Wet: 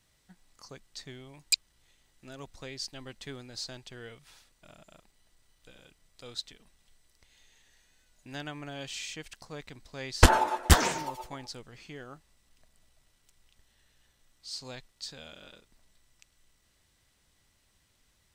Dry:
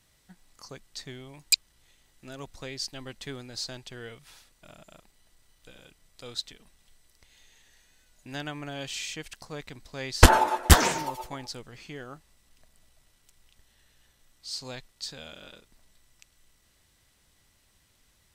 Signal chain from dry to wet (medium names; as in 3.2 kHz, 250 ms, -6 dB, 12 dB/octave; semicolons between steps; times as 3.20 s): peaking EQ 12 kHz -5 dB 0.36 oct; trim -3.5 dB